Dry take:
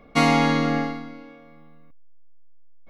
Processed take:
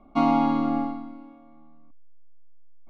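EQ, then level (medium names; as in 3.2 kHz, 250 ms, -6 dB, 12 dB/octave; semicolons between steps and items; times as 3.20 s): low-pass 1.9 kHz 12 dB/octave; static phaser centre 480 Hz, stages 6; 0.0 dB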